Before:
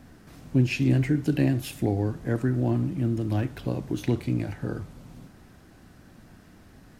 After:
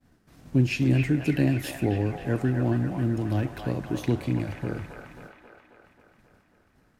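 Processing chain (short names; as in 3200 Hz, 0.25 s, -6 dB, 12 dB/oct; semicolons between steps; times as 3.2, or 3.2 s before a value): expander -41 dBFS; on a send: band-limited delay 0.269 s, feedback 64%, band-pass 1300 Hz, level -3 dB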